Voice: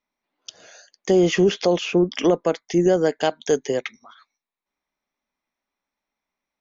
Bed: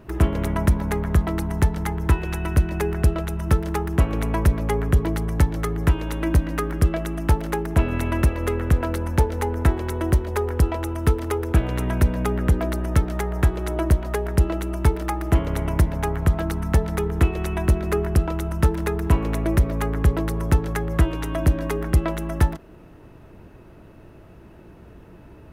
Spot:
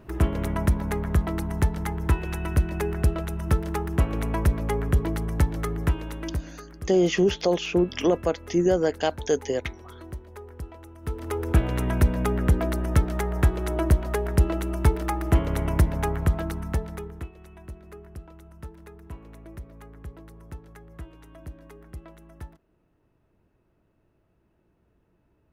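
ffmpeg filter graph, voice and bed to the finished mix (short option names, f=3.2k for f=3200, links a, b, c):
-filter_complex "[0:a]adelay=5800,volume=-3.5dB[a];[1:a]volume=13.5dB,afade=t=out:st=5.73:d=0.88:silence=0.177828,afade=t=in:st=11.01:d=0.51:silence=0.141254,afade=t=out:st=16.02:d=1.28:silence=0.0944061[b];[a][b]amix=inputs=2:normalize=0"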